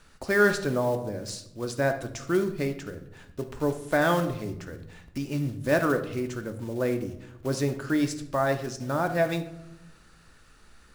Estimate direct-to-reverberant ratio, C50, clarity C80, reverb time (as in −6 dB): 6.5 dB, 11.0 dB, 14.5 dB, 0.90 s